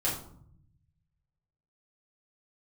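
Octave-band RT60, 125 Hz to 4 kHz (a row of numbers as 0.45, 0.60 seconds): 1.7, 1.1, 0.65, 0.60, 0.40, 0.35 seconds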